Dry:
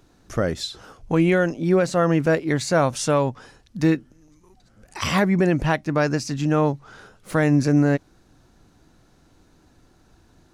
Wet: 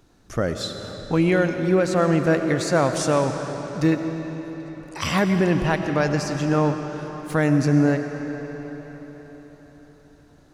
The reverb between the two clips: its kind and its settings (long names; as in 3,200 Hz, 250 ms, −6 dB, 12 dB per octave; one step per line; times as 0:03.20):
comb and all-pass reverb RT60 4.9 s, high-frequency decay 0.8×, pre-delay 60 ms, DRR 6 dB
level −1 dB